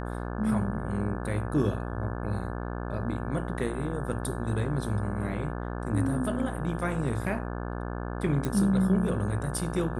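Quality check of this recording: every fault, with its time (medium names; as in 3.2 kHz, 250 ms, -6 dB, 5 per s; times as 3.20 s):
buzz 60 Hz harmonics 29 -34 dBFS
8.45 s: pop -17 dBFS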